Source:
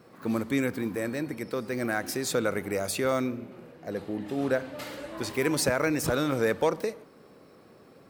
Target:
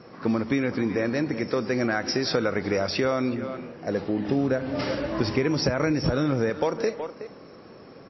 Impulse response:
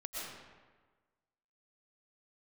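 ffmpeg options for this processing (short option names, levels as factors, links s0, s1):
-filter_complex "[0:a]asettb=1/sr,asplit=3[s0][s1][s2];[s0]atrim=end=4.284[s3];[s1]atrim=start=4.28:end=6.5,asetpts=PTS-STARTPTS,afade=t=in:d=0.004:c=qsin,afade=t=out:st=2.216:d=0.004:c=qsin,lowshelf=f=290:g=9.5[s4];[s2]atrim=start=6.496[s5];[s3][s4]acrossfade=d=0.004:c1=hsin:c2=qsin[s6];[s6][s5]acrossfade=d=0.004:c1=qsin:c2=hsin,asplit=2[s7][s8];[s8]adelay=370,highpass=300,lowpass=3400,asoftclip=type=hard:threshold=0.126,volume=0.178[s9];[s7][s9]amix=inputs=2:normalize=0,acompressor=threshold=0.0447:ratio=20,aexciter=amount=4.5:drive=7.4:freq=5600,highshelf=f=5900:g=-8.5,volume=2.51" -ar 16000 -c:a libmp3lame -b:a 24k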